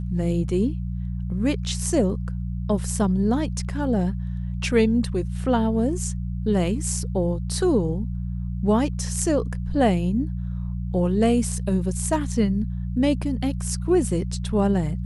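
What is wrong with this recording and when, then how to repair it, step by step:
mains hum 60 Hz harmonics 3 −28 dBFS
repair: hum removal 60 Hz, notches 3

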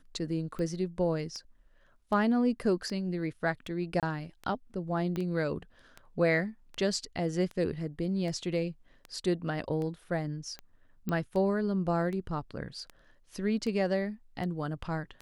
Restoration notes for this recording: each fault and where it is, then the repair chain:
scratch tick 78 rpm −27 dBFS
0:04.00–0:04.03: drop-out 27 ms
0:05.16: click −22 dBFS
0:11.09: click −21 dBFS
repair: click removal
repair the gap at 0:04.00, 27 ms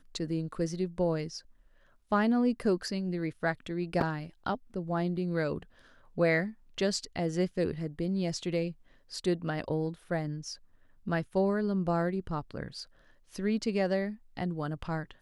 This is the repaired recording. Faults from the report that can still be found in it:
0:05.16: click

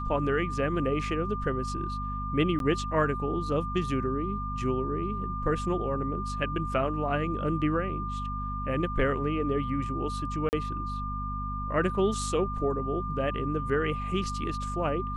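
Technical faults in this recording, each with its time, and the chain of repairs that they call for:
mains hum 50 Hz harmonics 5 −35 dBFS
whistle 1,200 Hz −34 dBFS
0:02.59–0:02.60: drop-out 12 ms
0:10.49–0:10.53: drop-out 39 ms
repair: hum removal 50 Hz, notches 5
notch filter 1,200 Hz, Q 30
repair the gap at 0:02.59, 12 ms
repair the gap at 0:10.49, 39 ms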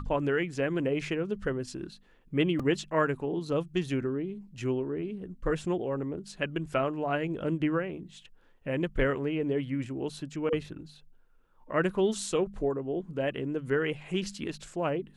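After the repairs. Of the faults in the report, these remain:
none of them is left

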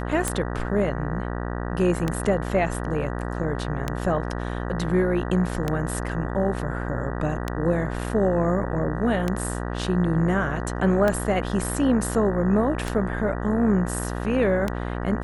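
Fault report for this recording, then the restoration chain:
mains buzz 60 Hz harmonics 32 −29 dBFS
scratch tick 33 1/3 rpm −10 dBFS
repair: click removal
hum removal 60 Hz, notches 32

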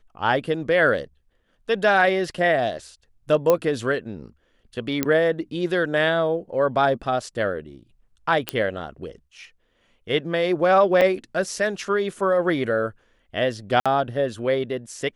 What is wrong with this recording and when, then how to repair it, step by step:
0:03.50: click −6 dBFS
0:05.03: click −6 dBFS
0:08.49: click −7 dBFS
0:11.01–0:11.02: drop-out 6 ms
0:13.80–0:13.86: drop-out 56 ms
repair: click removal
repair the gap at 0:11.01, 6 ms
repair the gap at 0:13.80, 56 ms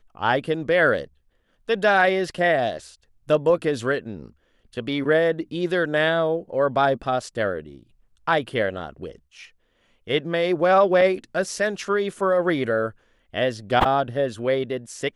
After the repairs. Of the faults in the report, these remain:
none of them is left

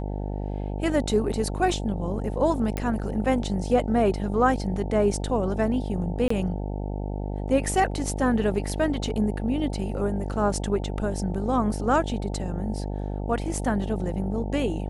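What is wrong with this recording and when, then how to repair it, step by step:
mains buzz 50 Hz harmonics 18 −30 dBFS
0:02.77: click −15 dBFS
0:06.28–0:06.30: drop-out 24 ms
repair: click removal
hum removal 50 Hz, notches 18
repair the gap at 0:06.28, 24 ms

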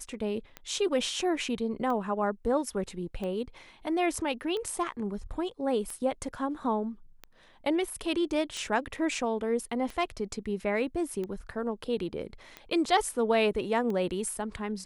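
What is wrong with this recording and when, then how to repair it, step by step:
scratch tick 45 rpm −24 dBFS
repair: click removal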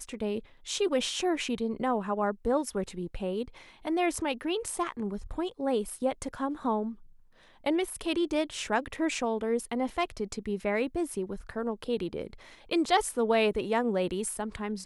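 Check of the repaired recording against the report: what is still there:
none of them is left

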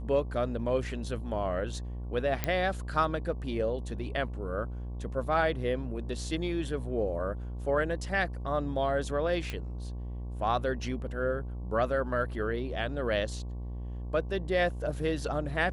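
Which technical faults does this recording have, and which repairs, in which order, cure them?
mains buzz 60 Hz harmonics 19 −37 dBFS
0:02.44: click −13 dBFS
0:09.50: click −21 dBFS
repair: click removal
hum removal 60 Hz, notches 19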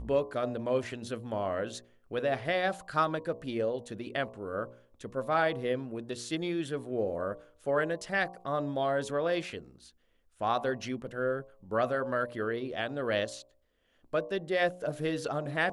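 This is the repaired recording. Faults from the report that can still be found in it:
none of them is left

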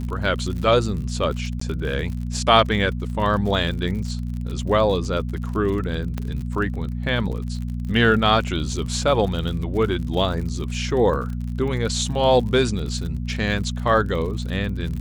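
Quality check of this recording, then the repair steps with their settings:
surface crackle 55 per second −30 dBFS
mains hum 60 Hz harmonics 4 −27 dBFS
0:01.60–0:01.61: drop-out 14 ms
0:06.18: click −15 dBFS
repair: click removal
hum removal 60 Hz, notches 4
repair the gap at 0:01.60, 14 ms

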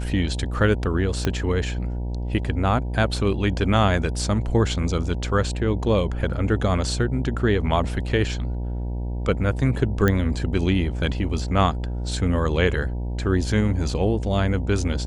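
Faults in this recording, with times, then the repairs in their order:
mains buzz 60 Hz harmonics 16 −27 dBFS
0:01.25: click −9 dBFS
0:10.08: click −8 dBFS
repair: click removal
hum removal 60 Hz, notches 16

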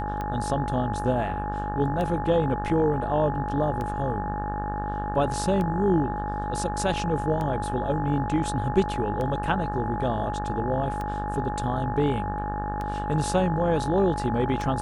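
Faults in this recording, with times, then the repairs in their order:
mains buzz 50 Hz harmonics 36 −32 dBFS
scratch tick 33 1/3 rpm −19 dBFS
whistle 840 Hz −30 dBFS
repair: click removal
hum removal 50 Hz, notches 36
notch filter 840 Hz, Q 30

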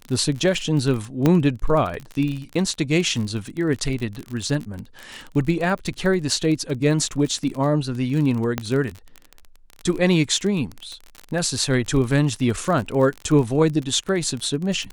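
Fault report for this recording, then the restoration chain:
surface crackle 36 per second −26 dBFS
0:01.26: click −6 dBFS
0:08.58: click −8 dBFS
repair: click removal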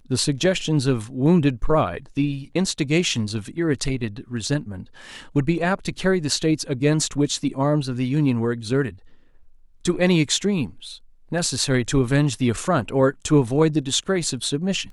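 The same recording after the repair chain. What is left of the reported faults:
0:01.26: click

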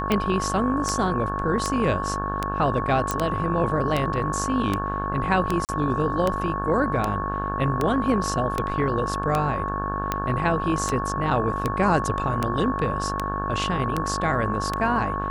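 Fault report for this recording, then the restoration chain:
mains buzz 50 Hz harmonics 35 −30 dBFS
scratch tick 78 rpm −9 dBFS
whistle 1,100 Hz −28 dBFS
0:03.11: click −9 dBFS
0:05.65–0:05.69: drop-out 38 ms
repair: click removal
hum removal 50 Hz, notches 35
notch filter 1,100 Hz, Q 30
repair the gap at 0:05.65, 38 ms

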